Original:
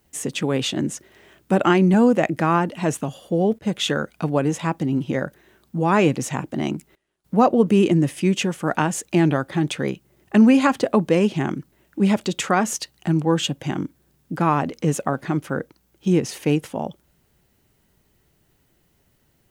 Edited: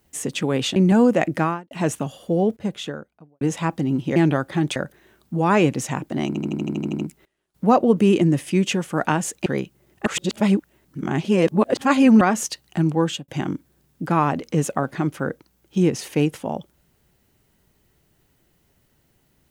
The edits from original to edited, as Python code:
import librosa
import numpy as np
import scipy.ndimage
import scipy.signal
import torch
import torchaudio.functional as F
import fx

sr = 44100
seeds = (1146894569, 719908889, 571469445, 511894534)

y = fx.studio_fade_out(x, sr, start_s=3.33, length_s=1.1)
y = fx.edit(y, sr, fx.cut(start_s=0.76, length_s=1.02),
    fx.fade_out_span(start_s=2.45, length_s=0.28, curve='qua'),
    fx.stutter(start_s=6.69, slice_s=0.08, count=10),
    fx.move(start_s=9.16, length_s=0.6, to_s=5.18),
    fx.reverse_span(start_s=10.36, length_s=2.15),
    fx.fade_out_span(start_s=13.21, length_s=0.37, curve='qsin'), tone=tone)